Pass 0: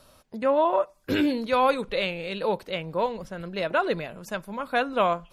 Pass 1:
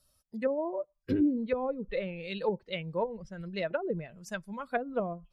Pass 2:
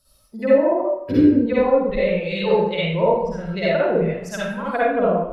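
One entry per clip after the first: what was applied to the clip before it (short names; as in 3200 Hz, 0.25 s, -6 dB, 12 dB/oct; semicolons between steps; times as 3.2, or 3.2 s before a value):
per-bin expansion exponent 1.5; treble ducked by the level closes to 370 Hz, closed at -22.5 dBFS
reverb RT60 0.80 s, pre-delay 47 ms, DRR -8.5 dB; gain +4.5 dB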